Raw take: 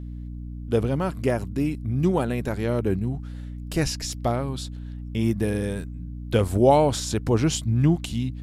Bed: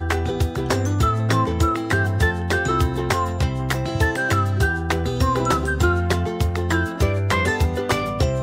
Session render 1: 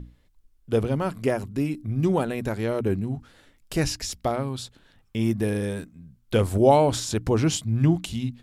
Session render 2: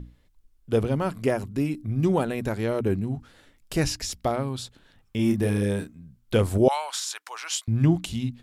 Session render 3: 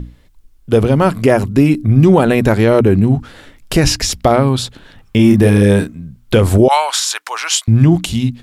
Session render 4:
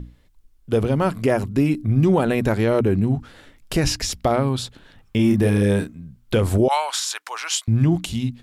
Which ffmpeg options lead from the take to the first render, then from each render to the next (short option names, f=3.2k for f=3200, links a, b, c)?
-af "bandreject=f=60:t=h:w=6,bandreject=f=120:t=h:w=6,bandreject=f=180:t=h:w=6,bandreject=f=240:t=h:w=6,bandreject=f=300:t=h:w=6"
-filter_complex "[0:a]asettb=1/sr,asplit=3[a][b][c];[a]atrim=end=5.164[d];[b]atrim=start=5.16:end=5.95,asetpts=PTS-STARTPTS,afade=t=in:d=0.004:c=qsin,afade=t=out:st=0.786:d=0.004:c=qsin,asplit=2[e][f];[f]adelay=30,volume=-4.5dB[g];[e][g]amix=inputs=2:normalize=0,atrim=end_sample=34839[h];[c]atrim=start=5.946[i];[d][h]acrossfade=d=0.004:c1=hsin:c2=qsin[j];[j][i]acrossfade=d=0.004:c1=qsin:c2=hsin,asettb=1/sr,asplit=3[k][l][m];[k]atrim=end=6.684[n];[l]atrim=start=6.68:end=7.68,asetpts=PTS-STARTPTS,afade=t=in:d=0.004:c=qsin,afade=t=out:st=0.996:d=0.004:c=qsin,highpass=f=980:w=0.5412,highpass=f=980:w=1.3066[o];[m]atrim=start=7.676[p];[n][o]acrossfade=d=0.004:c1=hsin:c2=qsin[q];[q][p]acrossfade=d=0.004:c1=qsin:c2=hsin"
-filter_complex "[0:a]acrossover=split=4100[a][b];[a]dynaudnorm=f=210:g=11:m=4dB[c];[c][b]amix=inputs=2:normalize=0,alimiter=level_in=13dB:limit=-1dB:release=50:level=0:latency=1"
-af "volume=-8dB"